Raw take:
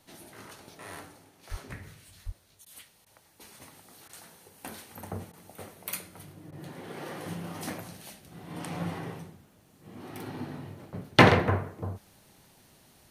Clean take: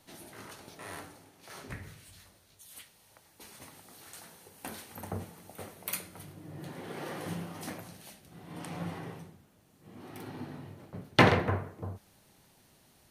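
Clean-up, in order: 1.5–1.62 HPF 140 Hz 24 dB/oct; 2.25–2.37 HPF 140 Hz 24 dB/oct; interpolate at 2.65/3.05/4.08/5.32/6.51, 12 ms; 7.44 gain correction -4 dB

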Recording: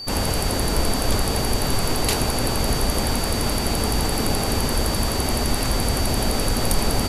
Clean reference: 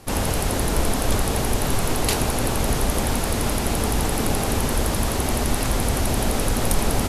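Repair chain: de-click; notch 4600 Hz, Q 30

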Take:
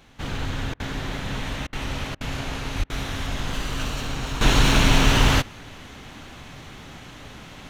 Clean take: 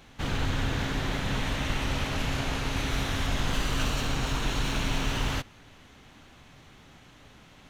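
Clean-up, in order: 2.78–2.9 HPF 140 Hz 24 dB/oct; interpolate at 0.74/1.67/2.15/2.84, 57 ms; gain 0 dB, from 4.41 s -11.5 dB

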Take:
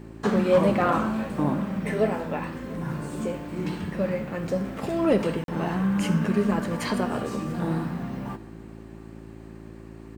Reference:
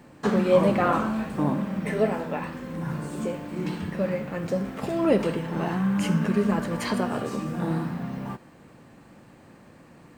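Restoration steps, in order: clip repair -12.5 dBFS; de-hum 55.2 Hz, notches 7; interpolate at 5.44, 42 ms; inverse comb 0.69 s -22.5 dB

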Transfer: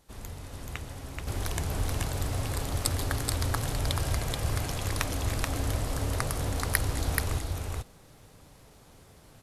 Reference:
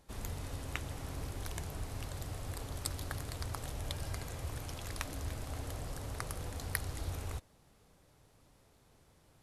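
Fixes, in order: expander -46 dBFS, range -21 dB; inverse comb 0.43 s -3 dB; gain 0 dB, from 1.27 s -9 dB

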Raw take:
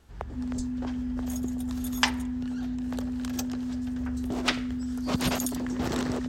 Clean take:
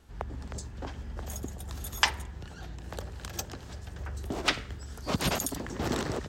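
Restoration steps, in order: notch 250 Hz, Q 30; 0.56–0.68 HPF 140 Hz 24 dB/oct

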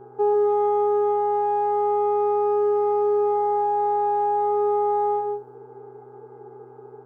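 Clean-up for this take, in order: de-hum 125.3 Hz, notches 13; inverse comb 0.149 s -4.5 dB

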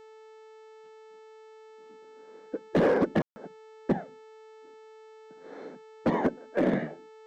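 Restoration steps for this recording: clip repair -18 dBFS; de-hum 438.2 Hz, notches 18; room tone fill 3.22–3.36

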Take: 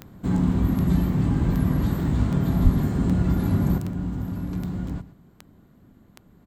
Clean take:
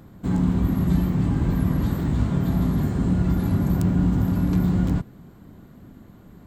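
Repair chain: de-click; 2.63–2.75 HPF 140 Hz 24 dB/oct; inverse comb 0.119 s -16.5 dB; gain 0 dB, from 3.78 s +8 dB

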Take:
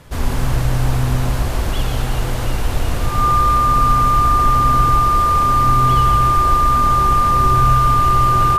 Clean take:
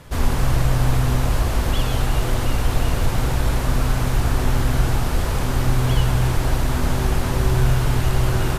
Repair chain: notch 1200 Hz, Q 30; inverse comb 0.142 s -7 dB

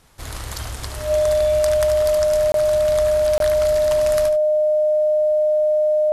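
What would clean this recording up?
notch 610 Hz, Q 30; interpolate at 2.52/3.38, 22 ms; inverse comb 73 ms -9.5 dB

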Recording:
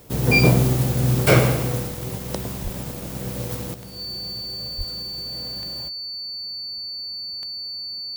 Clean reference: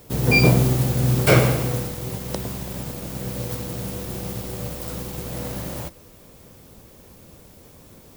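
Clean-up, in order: de-click; notch 4500 Hz, Q 30; 2.63–2.75 HPF 140 Hz 24 dB/oct; 4.77–4.89 HPF 140 Hz 24 dB/oct; gain 0 dB, from 3.74 s +9.5 dB

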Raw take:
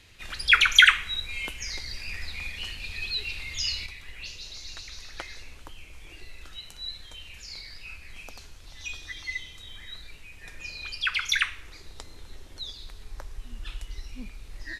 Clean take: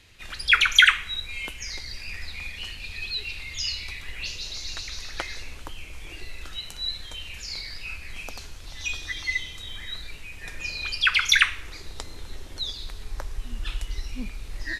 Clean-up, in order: gain 0 dB, from 3.86 s +6.5 dB

